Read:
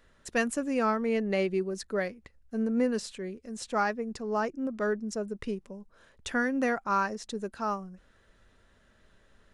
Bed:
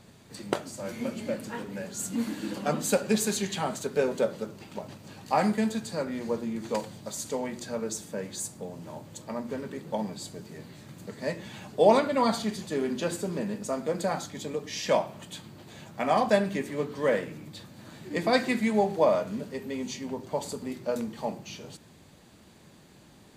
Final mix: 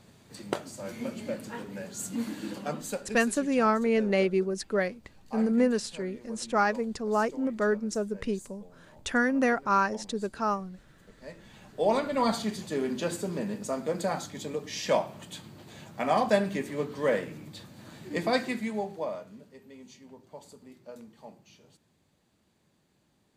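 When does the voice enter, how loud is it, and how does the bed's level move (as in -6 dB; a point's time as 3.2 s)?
2.80 s, +3.0 dB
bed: 2.5 s -2.5 dB
3.28 s -15 dB
11.15 s -15 dB
12.27 s -1 dB
18.19 s -1 dB
19.41 s -15.5 dB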